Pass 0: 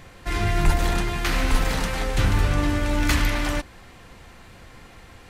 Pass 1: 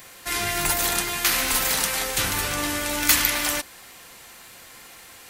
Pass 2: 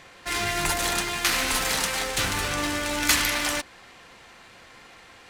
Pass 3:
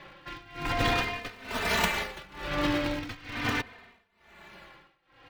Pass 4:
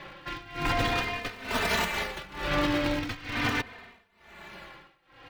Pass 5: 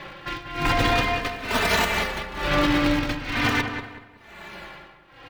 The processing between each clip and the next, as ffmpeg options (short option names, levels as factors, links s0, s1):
-af "aemphasis=mode=production:type=riaa"
-af "adynamicsmooth=sensitivity=7:basefreq=3800"
-filter_complex "[0:a]acrossover=split=580|4200[s0][s1][s2];[s2]acrusher=samples=42:mix=1:aa=0.000001:lfo=1:lforange=67.2:lforate=0.4[s3];[s0][s1][s3]amix=inputs=3:normalize=0,tremolo=f=1.1:d=0.95,asplit=2[s4][s5];[s5]adelay=3.1,afreqshift=-0.42[s6];[s4][s6]amix=inputs=2:normalize=1,volume=1.58"
-af "alimiter=limit=0.0944:level=0:latency=1:release=295,volume=1.68"
-filter_complex "[0:a]asplit=2[s0][s1];[s1]adelay=188,lowpass=f=2300:p=1,volume=0.447,asplit=2[s2][s3];[s3]adelay=188,lowpass=f=2300:p=1,volume=0.32,asplit=2[s4][s5];[s5]adelay=188,lowpass=f=2300:p=1,volume=0.32,asplit=2[s6][s7];[s7]adelay=188,lowpass=f=2300:p=1,volume=0.32[s8];[s0][s2][s4][s6][s8]amix=inputs=5:normalize=0,volume=1.88"